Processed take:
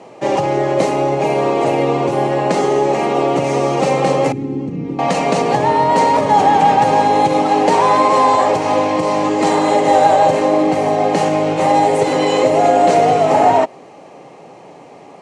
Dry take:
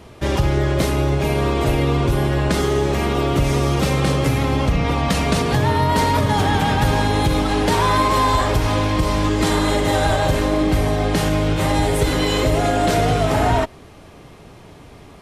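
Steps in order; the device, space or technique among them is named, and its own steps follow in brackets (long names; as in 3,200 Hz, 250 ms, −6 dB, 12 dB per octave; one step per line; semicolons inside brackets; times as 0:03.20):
0:04.32–0:04.99: drawn EQ curve 360 Hz 0 dB, 630 Hz −26 dB, 1,500 Hz −20 dB
television speaker (loudspeaker in its box 170–7,800 Hz, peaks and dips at 210 Hz −5 dB, 530 Hz +7 dB, 800 Hz +9 dB, 1,500 Hz −7 dB, 3,500 Hz −9 dB, 5,100 Hz −5 dB)
level +3 dB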